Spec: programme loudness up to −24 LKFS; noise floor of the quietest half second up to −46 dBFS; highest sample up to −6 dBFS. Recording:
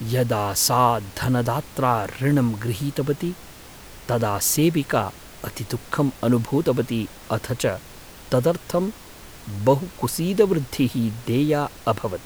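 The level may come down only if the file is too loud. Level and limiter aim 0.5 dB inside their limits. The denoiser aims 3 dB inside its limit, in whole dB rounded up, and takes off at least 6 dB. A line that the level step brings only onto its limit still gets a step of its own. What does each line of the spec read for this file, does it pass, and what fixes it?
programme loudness −22.5 LKFS: out of spec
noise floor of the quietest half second −42 dBFS: out of spec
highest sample −5.0 dBFS: out of spec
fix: broadband denoise 6 dB, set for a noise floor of −42 dBFS
level −2 dB

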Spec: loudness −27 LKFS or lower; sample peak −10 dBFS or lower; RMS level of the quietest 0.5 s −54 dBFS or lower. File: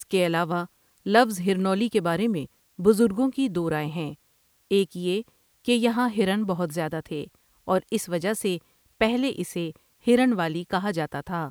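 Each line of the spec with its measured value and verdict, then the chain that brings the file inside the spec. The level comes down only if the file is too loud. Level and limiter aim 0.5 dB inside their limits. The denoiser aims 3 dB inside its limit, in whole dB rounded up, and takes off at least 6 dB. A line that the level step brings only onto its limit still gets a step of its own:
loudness −25.0 LKFS: out of spec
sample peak −5.5 dBFS: out of spec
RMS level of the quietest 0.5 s −65 dBFS: in spec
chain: level −2.5 dB
brickwall limiter −10.5 dBFS

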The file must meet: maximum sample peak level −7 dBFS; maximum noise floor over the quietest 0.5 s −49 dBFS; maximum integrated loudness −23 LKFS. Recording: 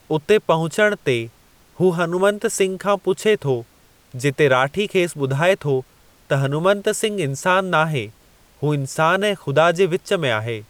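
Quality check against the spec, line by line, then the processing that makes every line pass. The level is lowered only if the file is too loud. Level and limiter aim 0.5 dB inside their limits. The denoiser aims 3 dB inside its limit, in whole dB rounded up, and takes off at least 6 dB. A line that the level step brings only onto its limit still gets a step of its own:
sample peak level −4.0 dBFS: out of spec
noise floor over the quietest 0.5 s −53 dBFS: in spec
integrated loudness −19.5 LKFS: out of spec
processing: level −4 dB

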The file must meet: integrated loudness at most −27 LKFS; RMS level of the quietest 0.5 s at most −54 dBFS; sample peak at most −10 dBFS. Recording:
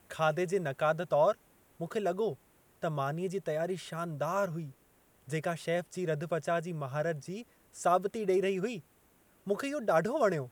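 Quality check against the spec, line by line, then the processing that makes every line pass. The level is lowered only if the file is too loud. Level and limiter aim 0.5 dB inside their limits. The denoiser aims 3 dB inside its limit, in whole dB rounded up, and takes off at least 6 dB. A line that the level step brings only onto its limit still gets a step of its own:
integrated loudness −32.5 LKFS: in spec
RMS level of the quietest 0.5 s −66 dBFS: in spec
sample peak −15.5 dBFS: in spec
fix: no processing needed

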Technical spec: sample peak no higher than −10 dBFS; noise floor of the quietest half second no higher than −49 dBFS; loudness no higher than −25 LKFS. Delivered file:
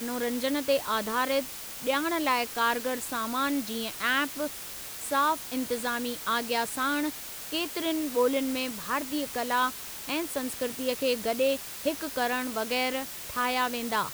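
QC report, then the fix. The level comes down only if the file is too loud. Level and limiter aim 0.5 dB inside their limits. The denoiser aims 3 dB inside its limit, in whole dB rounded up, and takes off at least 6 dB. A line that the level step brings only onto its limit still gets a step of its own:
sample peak −13.0 dBFS: in spec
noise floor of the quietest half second −40 dBFS: out of spec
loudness −29.0 LKFS: in spec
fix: broadband denoise 12 dB, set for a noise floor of −40 dBFS

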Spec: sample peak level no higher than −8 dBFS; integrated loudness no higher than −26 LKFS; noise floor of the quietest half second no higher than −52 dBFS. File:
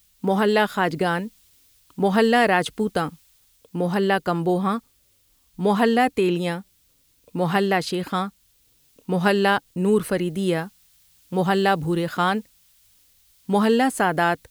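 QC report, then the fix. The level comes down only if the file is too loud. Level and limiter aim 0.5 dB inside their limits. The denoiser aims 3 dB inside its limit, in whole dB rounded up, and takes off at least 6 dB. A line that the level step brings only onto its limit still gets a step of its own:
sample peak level −6.0 dBFS: out of spec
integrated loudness −22.0 LKFS: out of spec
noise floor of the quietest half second −62 dBFS: in spec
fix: level −4.5 dB

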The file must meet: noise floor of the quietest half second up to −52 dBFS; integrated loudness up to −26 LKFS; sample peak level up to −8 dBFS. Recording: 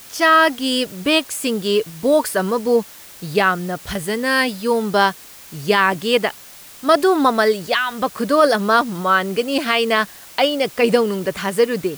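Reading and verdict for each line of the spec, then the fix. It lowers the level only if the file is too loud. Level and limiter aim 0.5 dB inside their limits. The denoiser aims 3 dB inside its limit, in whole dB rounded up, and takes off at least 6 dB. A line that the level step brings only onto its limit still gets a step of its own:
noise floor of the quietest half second −41 dBFS: out of spec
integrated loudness −18.0 LKFS: out of spec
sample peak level −3.0 dBFS: out of spec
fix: broadband denoise 6 dB, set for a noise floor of −41 dBFS
level −8.5 dB

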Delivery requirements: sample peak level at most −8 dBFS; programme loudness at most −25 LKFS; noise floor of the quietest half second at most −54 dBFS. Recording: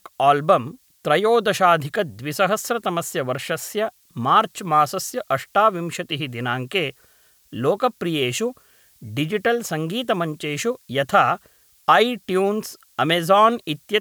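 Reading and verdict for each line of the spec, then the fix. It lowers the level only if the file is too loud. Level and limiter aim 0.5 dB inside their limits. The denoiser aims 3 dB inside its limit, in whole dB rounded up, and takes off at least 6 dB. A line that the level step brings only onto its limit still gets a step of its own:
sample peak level −3.5 dBFS: out of spec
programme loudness −21.0 LKFS: out of spec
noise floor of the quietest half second −57 dBFS: in spec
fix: level −4.5 dB
brickwall limiter −8.5 dBFS

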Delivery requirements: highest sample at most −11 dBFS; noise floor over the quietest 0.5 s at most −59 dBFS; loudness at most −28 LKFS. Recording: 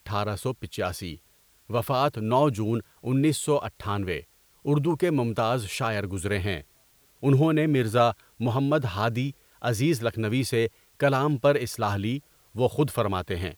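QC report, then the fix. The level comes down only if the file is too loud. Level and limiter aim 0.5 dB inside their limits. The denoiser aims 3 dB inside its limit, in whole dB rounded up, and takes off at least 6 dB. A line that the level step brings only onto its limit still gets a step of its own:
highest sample −9.0 dBFS: out of spec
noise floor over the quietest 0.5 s −61 dBFS: in spec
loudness −26.0 LKFS: out of spec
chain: level −2.5 dB

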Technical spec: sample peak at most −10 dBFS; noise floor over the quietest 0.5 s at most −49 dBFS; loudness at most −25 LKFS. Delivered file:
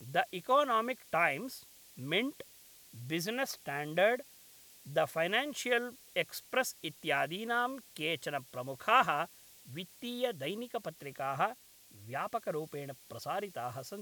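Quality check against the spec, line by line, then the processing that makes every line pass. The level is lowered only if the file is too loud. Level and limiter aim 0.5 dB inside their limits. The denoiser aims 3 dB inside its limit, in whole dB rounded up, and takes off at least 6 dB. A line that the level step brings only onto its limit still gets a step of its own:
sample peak −12.0 dBFS: in spec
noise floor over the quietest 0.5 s −58 dBFS: in spec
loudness −34.5 LKFS: in spec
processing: no processing needed

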